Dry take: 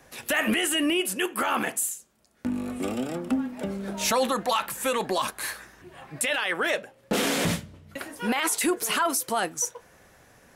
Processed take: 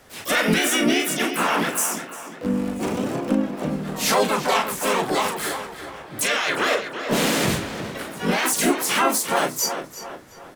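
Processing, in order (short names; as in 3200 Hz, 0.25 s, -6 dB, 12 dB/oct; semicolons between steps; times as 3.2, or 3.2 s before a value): doubler 37 ms -7 dB; tape echo 0.351 s, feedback 48%, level -7.5 dB, low-pass 2900 Hz; harmoniser -4 st -1 dB, +3 st -5 dB, +12 st -6 dB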